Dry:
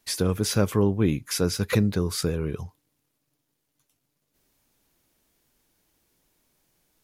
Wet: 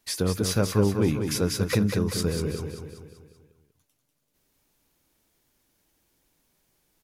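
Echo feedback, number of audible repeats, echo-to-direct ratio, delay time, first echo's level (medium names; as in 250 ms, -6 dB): 51%, 5, -5.0 dB, 193 ms, -6.5 dB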